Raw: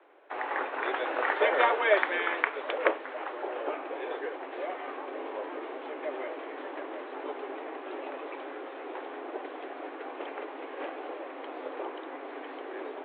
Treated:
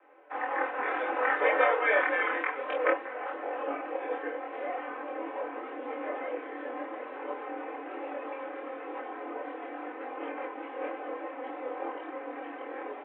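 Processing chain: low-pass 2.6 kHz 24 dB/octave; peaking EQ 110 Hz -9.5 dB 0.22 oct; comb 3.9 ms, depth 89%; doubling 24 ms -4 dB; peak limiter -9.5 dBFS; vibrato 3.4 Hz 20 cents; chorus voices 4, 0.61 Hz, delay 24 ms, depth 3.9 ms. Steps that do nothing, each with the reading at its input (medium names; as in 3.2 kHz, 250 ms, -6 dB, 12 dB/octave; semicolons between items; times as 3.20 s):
peaking EQ 110 Hz: input has nothing below 230 Hz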